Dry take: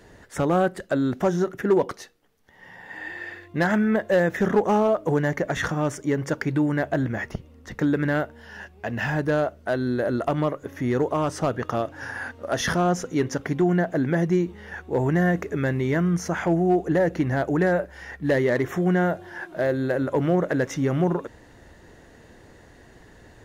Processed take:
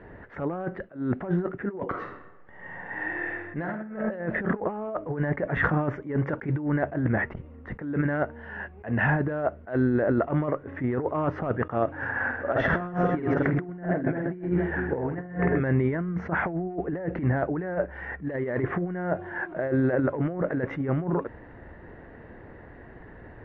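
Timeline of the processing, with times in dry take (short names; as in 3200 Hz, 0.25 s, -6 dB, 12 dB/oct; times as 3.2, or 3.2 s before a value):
1.84–4.1 reverb throw, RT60 1 s, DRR 2 dB
12.12–15.61 reverse bouncing-ball echo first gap 50 ms, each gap 1.6×, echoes 5
whole clip: LPF 2100 Hz 24 dB/oct; negative-ratio compressor -25 dBFS, ratio -0.5; attack slew limiter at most 210 dB/s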